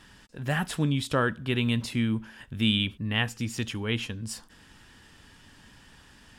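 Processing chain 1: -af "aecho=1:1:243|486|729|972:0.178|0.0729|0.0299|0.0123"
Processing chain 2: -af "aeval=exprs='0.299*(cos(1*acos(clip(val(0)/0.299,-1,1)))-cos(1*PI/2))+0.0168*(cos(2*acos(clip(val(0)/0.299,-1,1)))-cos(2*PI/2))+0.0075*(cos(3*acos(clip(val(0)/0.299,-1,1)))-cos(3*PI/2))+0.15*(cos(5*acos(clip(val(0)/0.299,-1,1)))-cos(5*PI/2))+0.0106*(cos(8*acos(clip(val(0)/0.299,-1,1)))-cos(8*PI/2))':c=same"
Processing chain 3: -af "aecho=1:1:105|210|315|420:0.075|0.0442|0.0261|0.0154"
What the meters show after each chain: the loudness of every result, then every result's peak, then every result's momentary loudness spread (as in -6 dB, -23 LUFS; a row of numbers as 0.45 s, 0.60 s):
-28.5 LUFS, -20.5 LUFS, -28.5 LUFS; -11.0 dBFS, -10.0 dBFS, -11.0 dBFS; 10 LU, 9 LU, 11 LU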